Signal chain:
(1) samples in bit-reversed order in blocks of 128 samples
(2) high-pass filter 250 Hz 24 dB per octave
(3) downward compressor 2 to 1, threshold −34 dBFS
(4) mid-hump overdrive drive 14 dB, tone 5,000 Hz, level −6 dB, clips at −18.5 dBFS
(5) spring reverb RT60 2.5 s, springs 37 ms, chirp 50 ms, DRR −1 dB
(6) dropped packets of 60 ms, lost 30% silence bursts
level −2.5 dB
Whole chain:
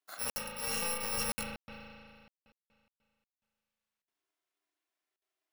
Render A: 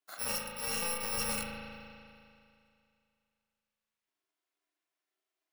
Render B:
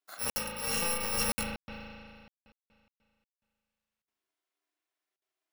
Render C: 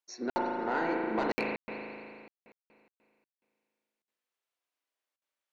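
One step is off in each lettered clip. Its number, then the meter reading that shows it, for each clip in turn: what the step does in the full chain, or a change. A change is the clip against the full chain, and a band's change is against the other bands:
6, change in momentary loudness spread −2 LU
3, average gain reduction 5.0 dB
1, 4 kHz band −18.0 dB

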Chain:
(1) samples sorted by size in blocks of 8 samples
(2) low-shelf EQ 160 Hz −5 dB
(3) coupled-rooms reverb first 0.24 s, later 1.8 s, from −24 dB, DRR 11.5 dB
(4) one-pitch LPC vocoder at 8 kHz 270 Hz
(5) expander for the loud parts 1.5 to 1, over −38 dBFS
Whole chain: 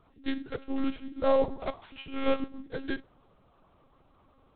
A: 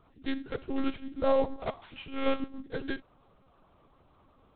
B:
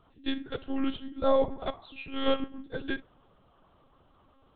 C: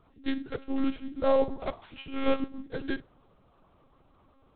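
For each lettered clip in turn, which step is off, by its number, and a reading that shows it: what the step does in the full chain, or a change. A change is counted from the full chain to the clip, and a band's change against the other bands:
3, change in momentary loudness spread −1 LU
1, distortion level −9 dB
2, 250 Hz band +1.5 dB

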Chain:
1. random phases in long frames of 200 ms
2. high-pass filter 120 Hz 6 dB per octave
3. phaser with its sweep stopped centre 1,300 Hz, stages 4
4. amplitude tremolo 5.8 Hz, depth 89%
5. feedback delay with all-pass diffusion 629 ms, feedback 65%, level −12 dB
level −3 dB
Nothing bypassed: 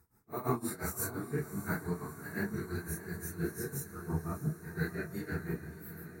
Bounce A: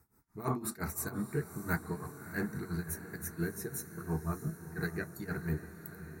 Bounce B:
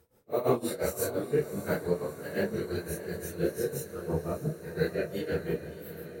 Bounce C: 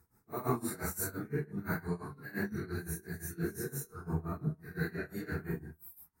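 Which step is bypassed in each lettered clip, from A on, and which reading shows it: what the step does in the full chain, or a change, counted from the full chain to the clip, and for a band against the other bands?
1, change in crest factor −1.5 dB
3, 500 Hz band +9.5 dB
5, echo-to-direct ratio −9.5 dB to none audible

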